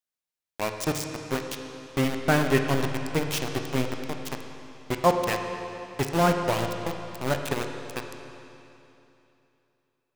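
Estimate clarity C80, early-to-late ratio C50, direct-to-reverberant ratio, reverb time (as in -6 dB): 6.0 dB, 5.0 dB, 4.0 dB, 3.0 s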